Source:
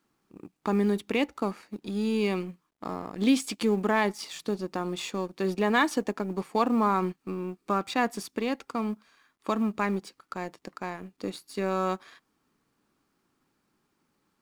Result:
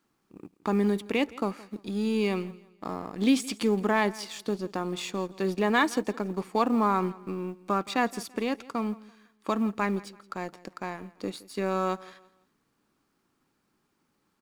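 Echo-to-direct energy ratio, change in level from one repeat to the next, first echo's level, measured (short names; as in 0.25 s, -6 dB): -20.0 dB, -9.5 dB, -20.5 dB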